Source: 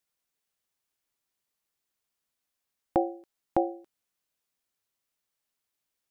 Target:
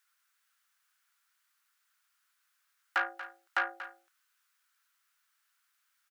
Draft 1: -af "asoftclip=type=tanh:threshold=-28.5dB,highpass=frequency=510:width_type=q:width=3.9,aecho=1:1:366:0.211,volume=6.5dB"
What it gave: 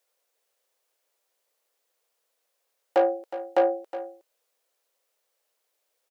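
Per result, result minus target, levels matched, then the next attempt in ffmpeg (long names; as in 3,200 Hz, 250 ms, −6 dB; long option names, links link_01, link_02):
500 Hz band +17.0 dB; echo 131 ms late
-af "asoftclip=type=tanh:threshold=-28.5dB,highpass=frequency=1400:width_type=q:width=3.9,aecho=1:1:366:0.211,volume=6.5dB"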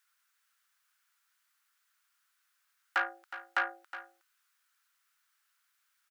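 echo 131 ms late
-af "asoftclip=type=tanh:threshold=-28.5dB,highpass=frequency=1400:width_type=q:width=3.9,aecho=1:1:235:0.211,volume=6.5dB"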